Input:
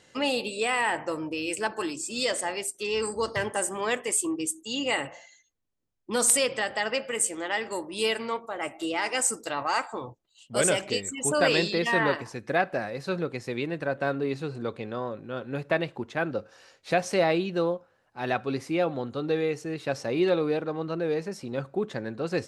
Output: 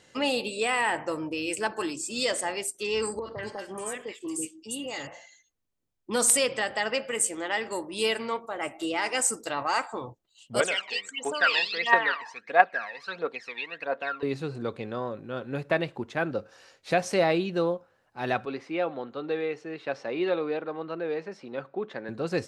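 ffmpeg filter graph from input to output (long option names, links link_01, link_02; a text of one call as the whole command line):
ffmpeg -i in.wav -filter_complex "[0:a]asettb=1/sr,asplit=3[link_01][link_02][link_03];[link_01]atrim=end=3.194[link_04];[link_02]atrim=start=3.19:end=5.07,asetpts=PTS-STARTPTS,afade=type=in:duration=0.004:curve=qsin,afade=type=out:start_time=1.876:duration=0.004:curve=qsin,acompressor=threshold=-33dB:ratio=2.5:attack=3.2:release=140:knee=1:detection=peak,acrossover=split=1100|3500[link_05][link_06][link_07];[link_06]adelay=30[link_08];[link_07]adelay=240[link_09];[link_05][link_08][link_09]amix=inputs=3:normalize=0,atrim=end_sample=82908[link_10];[link_03]atrim=start=5.066[link_11];[link_04][link_10]acrossfade=duration=0.004:curve1=hsin:curve2=qsin[link_12];[link_12][link_11]acrossfade=duration=0.004:curve1=qsin:curve2=hsin,asettb=1/sr,asplit=3[link_13][link_14][link_15];[link_13]atrim=end=10.604[link_16];[link_14]atrim=start=10.6:end=14.23,asetpts=PTS-STARTPTS,afade=type=in:duration=0.004:curve=qsin,afade=type=out:start_time=3.626:duration=0.004:curve=qsin,aphaser=in_gain=1:out_gain=1:delay=1.2:decay=0.74:speed=1.5:type=triangular,highpass=780,lowpass=3700,aecho=1:1:4.3:0.38,atrim=end_sample=160083[link_17];[link_15]atrim=start=14.226[link_18];[link_16][link_17]acrossfade=duration=0.004:curve1=hsin:curve2=qsin[link_19];[link_19][link_18]acrossfade=duration=0.004:curve1=qsin:curve2=hsin,asettb=1/sr,asplit=3[link_20][link_21][link_22];[link_20]atrim=end=18.454[link_23];[link_21]atrim=start=18.45:end=22.09,asetpts=PTS-STARTPTS,afade=type=in:duration=0.004:curve=qsin,afade=type=out:start_time=3.636:duration=0.004:curve=qsin,highpass=180,lowpass=3200,lowshelf=frequency=340:gain=-8[link_24];[link_22]atrim=start=22.086[link_25];[link_23][link_24]acrossfade=duration=0.004:curve1=hsin:curve2=qsin[link_26];[link_26][link_25]acrossfade=duration=0.004:curve1=qsin:curve2=hsin" out.wav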